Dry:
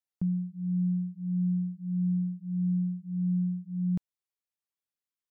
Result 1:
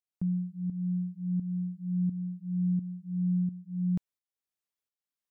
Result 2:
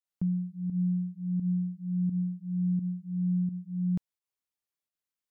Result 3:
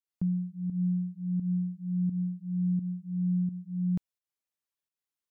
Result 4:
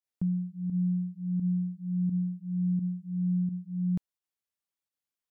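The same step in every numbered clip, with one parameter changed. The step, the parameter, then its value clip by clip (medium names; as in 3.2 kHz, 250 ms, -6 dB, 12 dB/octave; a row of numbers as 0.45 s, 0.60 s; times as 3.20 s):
volume shaper, release: 477 ms, 124 ms, 188 ms, 75 ms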